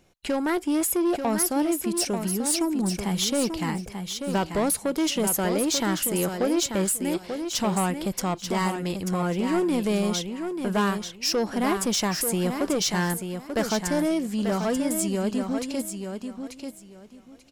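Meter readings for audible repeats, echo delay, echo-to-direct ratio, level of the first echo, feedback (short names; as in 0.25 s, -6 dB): 3, 0.888 s, -7.0 dB, -7.0 dB, 21%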